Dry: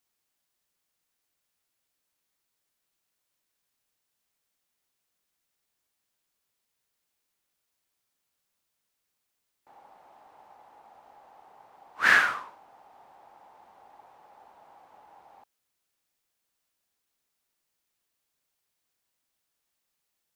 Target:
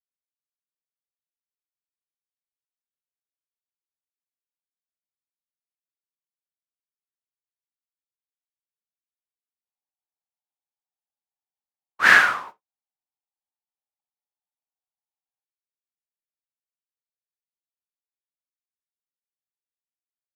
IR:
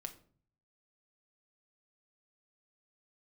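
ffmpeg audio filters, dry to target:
-filter_complex "[0:a]agate=range=0.00126:threshold=0.00631:ratio=16:detection=peak,asplit=2[s0][s1];[1:a]atrim=start_sample=2205,atrim=end_sample=3528[s2];[s1][s2]afir=irnorm=-1:irlink=0,volume=0.841[s3];[s0][s3]amix=inputs=2:normalize=0,volume=1.33"

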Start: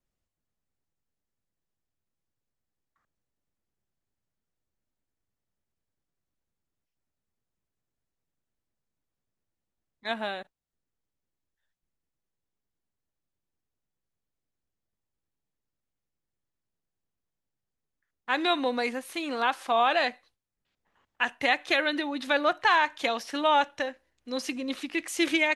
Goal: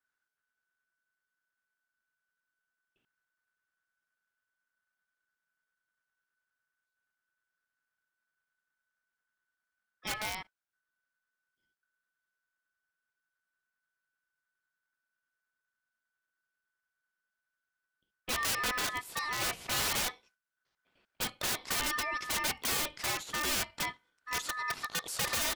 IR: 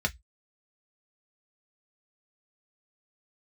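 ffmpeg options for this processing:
-af "aeval=exprs='(mod(15*val(0)+1,2)-1)/15':c=same,aeval=exprs='val(0)*sin(2*PI*1500*n/s)':c=same"

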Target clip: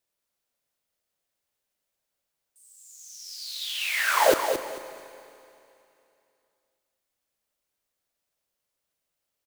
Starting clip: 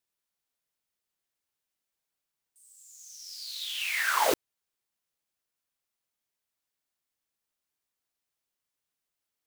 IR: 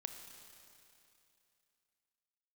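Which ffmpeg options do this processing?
-filter_complex "[0:a]equalizer=f=570:t=o:w=0.53:g=7.5,aecho=1:1:221|442|663:0.422|0.101|0.0243,asplit=2[s0][s1];[1:a]atrim=start_sample=2205,lowshelf=f=150:g=5[s2];[s1][s2]afir=irnorm=-1:irlink=0,volume=1.19[s3];[s0][s3]amix=inputs=2:normalize=0,volume=0.75"

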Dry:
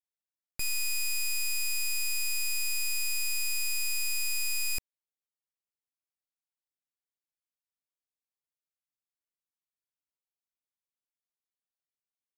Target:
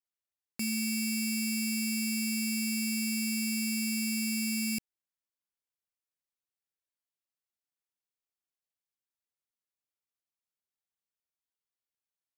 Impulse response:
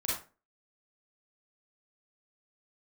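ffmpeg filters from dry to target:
-af "aeval=exprs='val(0)*sin(2*PI*220*n/s)':c=same"

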